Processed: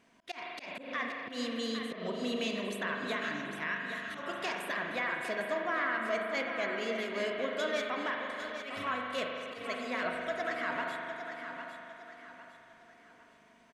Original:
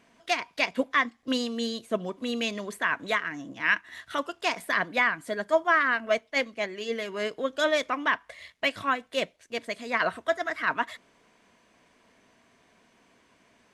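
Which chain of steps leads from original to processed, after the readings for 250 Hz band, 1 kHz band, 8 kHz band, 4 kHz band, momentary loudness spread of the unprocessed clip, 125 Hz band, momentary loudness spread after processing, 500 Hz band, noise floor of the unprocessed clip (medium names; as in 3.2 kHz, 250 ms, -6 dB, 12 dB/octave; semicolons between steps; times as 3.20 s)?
-5.0 dB, -7.0 dB, -7.0 dB, -6.5 dB, 8 LU, -3.0 dB, 10 LU, -6.0 dB, -64 dBFS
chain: peak limiter -20.5 dBFS, peak gain reduction 10 dB; spring tank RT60 3.1 s, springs 40 ms, chirp 45 ms, DRR 1 dB; slow attack 131 ms; on a send: feedback delay 805 ms, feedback 37%, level -9 dB; on the sum: trim -5 dB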